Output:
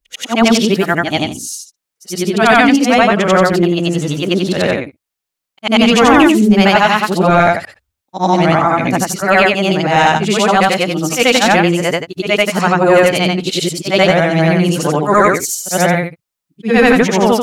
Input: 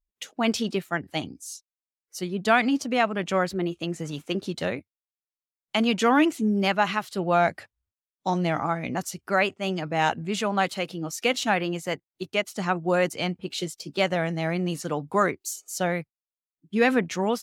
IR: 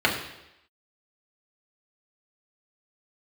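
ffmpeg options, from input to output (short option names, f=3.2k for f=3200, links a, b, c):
-af "afftfilt=real='re':imag='-im':win_size=8192:overlap=0.75,apsyclip=21dB,volume=-2dB"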